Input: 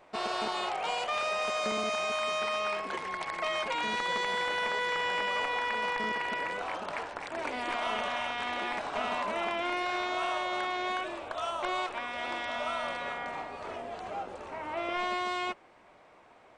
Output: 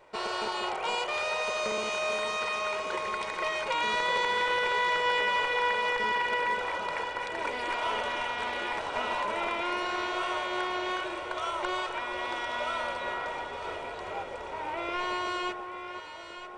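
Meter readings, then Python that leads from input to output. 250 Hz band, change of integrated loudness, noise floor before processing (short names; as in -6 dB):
+0.5 dB, +2.0 dB, -58 dBFS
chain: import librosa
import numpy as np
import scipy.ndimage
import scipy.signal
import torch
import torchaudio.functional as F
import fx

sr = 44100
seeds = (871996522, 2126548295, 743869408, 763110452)

y = fx.rattle_buzz(x, sr, strikes_db=-49.0, level_db=-38.0)
y = y + 0.49 * np.pad(y, (int(2.1 * sr / 1000.0), 0))[:len(y)]
y = fx.echo_alternate(y, sr, ms=472, hz=1400.0, feedback_pct=73, wet_db=-6.5)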